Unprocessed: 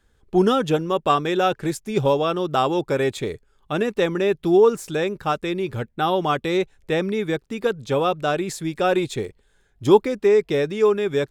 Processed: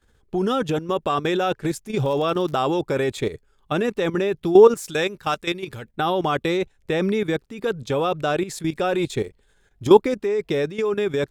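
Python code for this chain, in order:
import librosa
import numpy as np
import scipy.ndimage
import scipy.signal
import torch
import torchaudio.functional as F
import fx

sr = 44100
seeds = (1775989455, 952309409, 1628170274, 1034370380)

y = fx.tilt_shelf(x, sr, db=-4.5, hz=1400.0, at=(4.75, 5.85))
y = fx.level_steps(y, sr, step_db=13)
y = fx.dmg_crackle(y, sr, seeds[0], per_s=fx.line((2.04, 24.0), (2.58, 110.0)), level_db=-35.0, at=(2.04, 2.58), fade=0.02)
y = F.gain(torch.from_numpy(y), 5.0).numpy()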